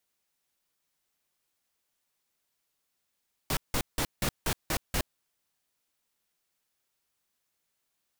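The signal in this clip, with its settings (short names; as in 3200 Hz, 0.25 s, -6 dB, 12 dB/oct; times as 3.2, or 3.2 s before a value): noise bursts pink, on 0.07 s, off 0.17 s, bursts 7, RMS -28 dBFS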